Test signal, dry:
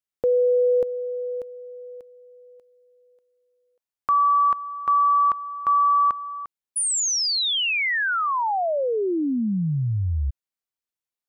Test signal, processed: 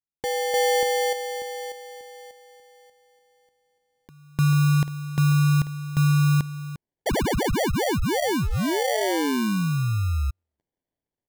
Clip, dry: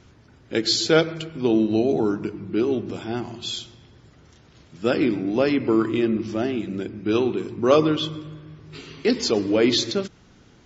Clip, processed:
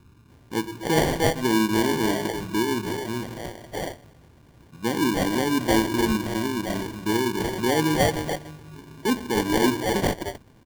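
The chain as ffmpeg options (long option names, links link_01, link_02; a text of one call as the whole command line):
ffmpeg -i in.wav -filter_complex "[0:a]acrossover=split=470[link_01][link_02];[link_02]adelay=300[link_03];[link_01][link_03]amix=inputs=2:normalize=0,acrusher=samples=34:mix=1:aa=0.000001" out.wav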